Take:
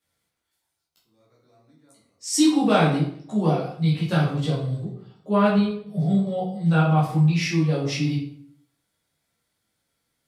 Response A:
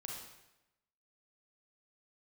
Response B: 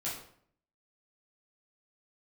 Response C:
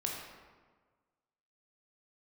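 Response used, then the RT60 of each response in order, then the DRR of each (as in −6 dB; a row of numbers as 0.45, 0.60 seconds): B; 0.95, 0.60, 1.5 seconds; −1.5, −8.0, −1.5 decibels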